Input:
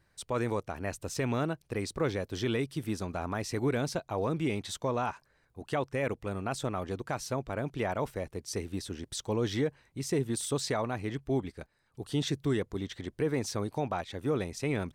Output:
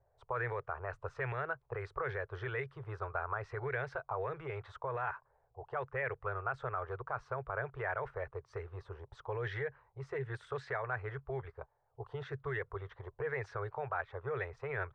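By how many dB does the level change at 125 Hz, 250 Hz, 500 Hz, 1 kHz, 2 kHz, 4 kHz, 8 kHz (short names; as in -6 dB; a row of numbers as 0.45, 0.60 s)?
-7.5 dB, -20.0 dB, -6.5 dB, -2.5 dB, +1.0 dB, -19.0 dB, under -30 dB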